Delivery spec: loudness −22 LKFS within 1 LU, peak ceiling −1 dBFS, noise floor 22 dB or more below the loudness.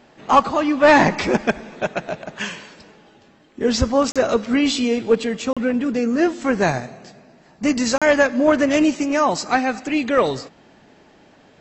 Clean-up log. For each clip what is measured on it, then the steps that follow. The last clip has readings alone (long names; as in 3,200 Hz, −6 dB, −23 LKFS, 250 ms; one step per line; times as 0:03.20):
number of dropouts 3; longest dropout 36 ms; integrated loudness −19.0 LKFS; sample peak −3.0 dBFS; target loudness −22.0 LKFS
→ repair the gap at 0:04.12/0:05.53/0:07.98, 36 ms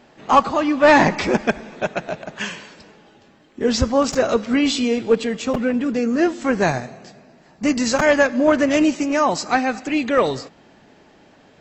number of dropouts 0; integrated loudness −19.0 LKFS; sample peak −3.0 dBFS; target loudness −22.0 LKFS
→ level −3 dB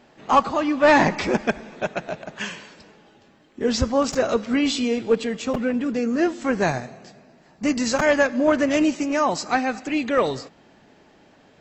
integrated loudness −22.0 LKFS; sample peak −6.0 dBFS; background noise floor −55 dBFS